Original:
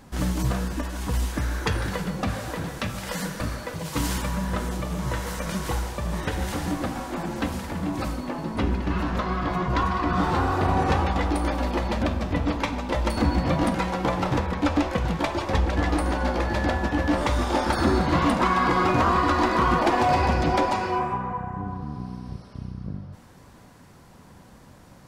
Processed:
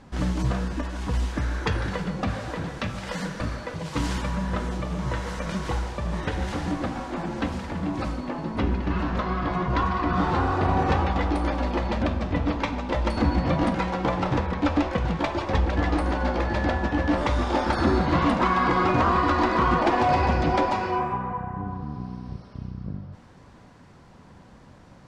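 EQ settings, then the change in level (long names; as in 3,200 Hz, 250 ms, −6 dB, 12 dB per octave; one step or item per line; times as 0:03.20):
high-frequency loss of the air 81 metres
0.0 dB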